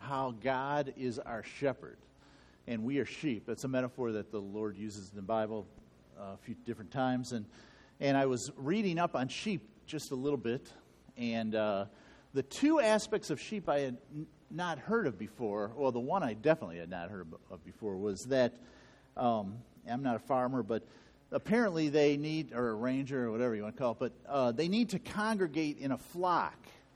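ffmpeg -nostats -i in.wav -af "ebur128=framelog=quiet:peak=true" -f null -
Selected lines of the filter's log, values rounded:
Integrated loudness:
  I:         -34.8 LUFS
  Threshold: -45.5 LUFS
Loudness range:
  LRA:         5.1 LU
  Threshold: -55.5 LUFS
  LRA low:   -38.5 LUFS
  LRA high:  -33.3 LUFS
True peak:
  Peak:      -13.5 dBFS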